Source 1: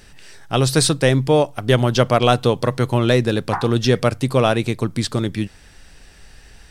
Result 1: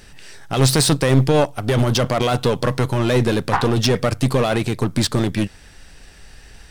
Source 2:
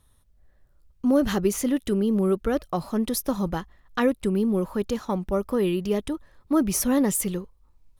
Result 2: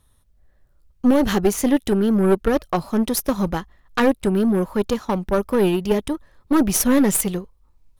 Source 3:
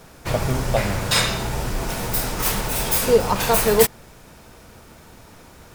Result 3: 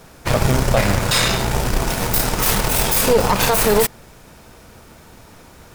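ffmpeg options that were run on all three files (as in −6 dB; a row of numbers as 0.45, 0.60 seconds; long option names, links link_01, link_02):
-af "alimiter=limit=-13dB:level=0:latency=1:release=10,aeval=exprs='0.224*(cos(1*acos(clip(val(0)/0.224,-1,1)))-cos(1*PI/2))+0.0562*(cos(2*acos(clip(val(0)/0.224,-1,1)))-cos(2*PI/2))+0.0126*(cos(7*acos(clip(val(0)/0.224,-1,1)))-cos(7*PI/2))':channel_layout=same,volume=6dB"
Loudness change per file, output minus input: −0.5, +5.0, +3.5 LU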